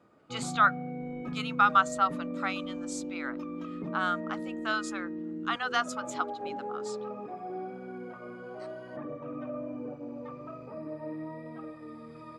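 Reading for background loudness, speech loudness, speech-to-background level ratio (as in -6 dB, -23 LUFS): -39.0 LUFS, -30.0 LUFS, 9.0 dB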